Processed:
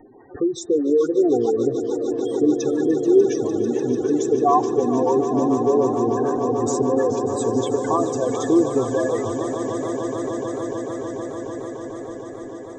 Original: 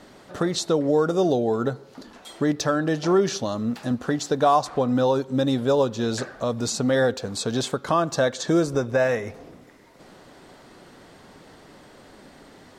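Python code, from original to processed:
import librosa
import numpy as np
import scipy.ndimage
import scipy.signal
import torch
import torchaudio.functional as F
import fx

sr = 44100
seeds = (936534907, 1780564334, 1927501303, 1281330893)

p1 = fx.spec_gate(x, sr, threshold_db=-10, keep='strong')
p2 = fx.fixed_phaser(p1, sr, hz=890.0, stages=8)
p3 = p2 + fx.echo_swell(p2, sr, ms=148, loudest=8, wet_db=-13.5, dry=0)
p4 = fx.echo_warbled(p3, sr, ms=430, feedback_pct=65, rate_hz=2.8, cents=180, wet_db=-14)
y = p4 * 10.0 ** (5.5 / 20.0)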